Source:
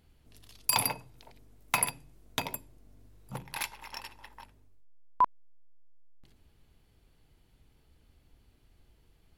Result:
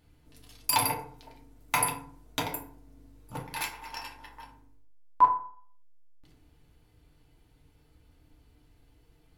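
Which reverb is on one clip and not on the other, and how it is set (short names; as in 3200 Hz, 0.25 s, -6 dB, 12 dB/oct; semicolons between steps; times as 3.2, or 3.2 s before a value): FDN reverb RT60 0.51 s, low-frequency decay 1×, high-frequency decay 0.5×, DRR -2 dB; gain -1.5 dB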